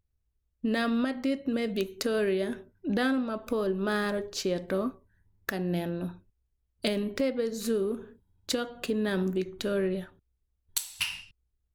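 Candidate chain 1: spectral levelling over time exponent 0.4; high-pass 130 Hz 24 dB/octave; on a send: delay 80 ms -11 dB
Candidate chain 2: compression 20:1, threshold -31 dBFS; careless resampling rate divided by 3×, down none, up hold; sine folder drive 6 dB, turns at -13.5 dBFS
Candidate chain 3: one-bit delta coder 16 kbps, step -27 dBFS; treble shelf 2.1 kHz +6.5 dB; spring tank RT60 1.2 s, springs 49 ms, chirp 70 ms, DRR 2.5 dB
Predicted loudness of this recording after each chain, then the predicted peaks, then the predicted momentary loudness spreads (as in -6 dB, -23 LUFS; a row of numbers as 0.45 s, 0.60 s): -25.0 LUFS, -27.0 LUFS, -27.5 LUFS; -4.5 dBFS, -12.5 dBFS, -13.0 dBFS; 9 LU, 7 LU, 6 LU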